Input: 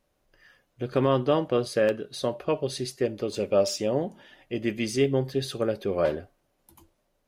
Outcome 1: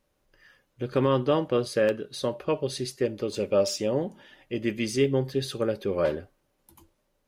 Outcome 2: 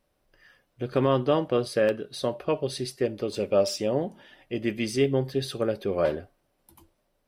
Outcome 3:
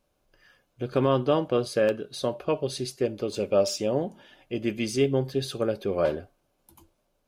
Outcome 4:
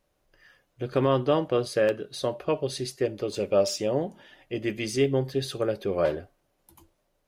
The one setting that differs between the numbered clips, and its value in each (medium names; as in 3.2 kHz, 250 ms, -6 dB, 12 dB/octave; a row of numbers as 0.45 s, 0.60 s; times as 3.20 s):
band-stop, frequency: 690 Hz, 6.7 kHz, 1.9 kHz, 230 Hz